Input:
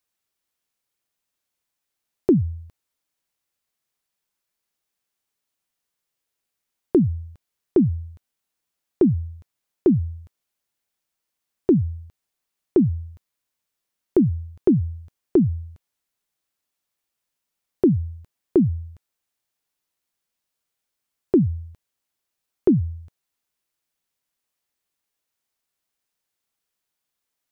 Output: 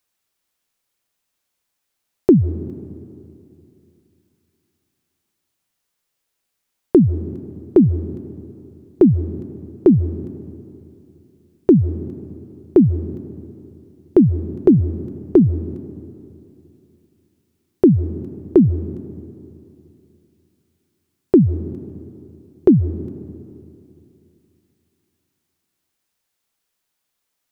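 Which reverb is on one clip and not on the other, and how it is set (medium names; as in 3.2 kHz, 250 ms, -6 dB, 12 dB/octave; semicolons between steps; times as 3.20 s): algorithmic reverb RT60 2.8 s, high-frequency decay 0.65×, pre-delay 110 ms, DRR 15 dB; trim +5.5 dB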